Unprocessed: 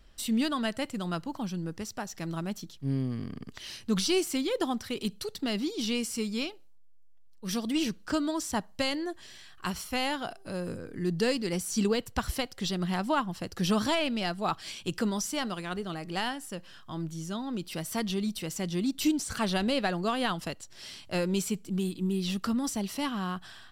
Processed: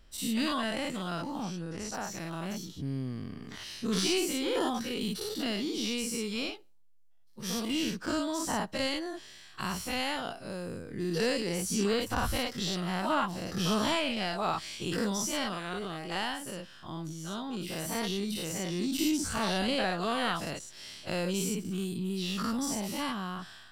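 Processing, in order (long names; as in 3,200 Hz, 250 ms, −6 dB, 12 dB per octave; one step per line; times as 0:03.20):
every bin's largest magnitude spread in time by 120 ms
0:01.43–0:01.94: low-pass filter 11,000 Hz 24 dB per octave
level −6 dB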